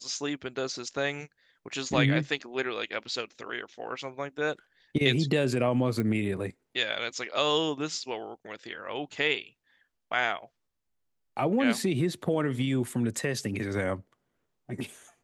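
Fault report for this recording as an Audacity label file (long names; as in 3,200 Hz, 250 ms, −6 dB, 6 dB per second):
6.000000	6.000000	click −19 dBFS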